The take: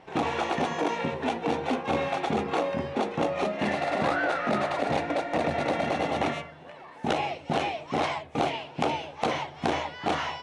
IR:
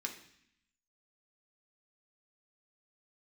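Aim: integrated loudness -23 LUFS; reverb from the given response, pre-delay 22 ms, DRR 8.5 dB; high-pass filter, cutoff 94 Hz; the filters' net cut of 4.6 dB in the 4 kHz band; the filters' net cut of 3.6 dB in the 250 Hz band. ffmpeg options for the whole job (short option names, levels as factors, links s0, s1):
-filter_complex "[0:a]highpass=94,equalizer=f=250:t=o:g=-4.5,equalizer=f=4000:t=o:g=-6.5,asplit=2[s0][s1];[1:a]atrim=start_sample=2205,adelay=22[s2];[s1][s2]afir=irnorm=-1:irlink=0,volume=0.376[s3];[s0][s3]amix=inputs=2:normalize=0,volume=2.11"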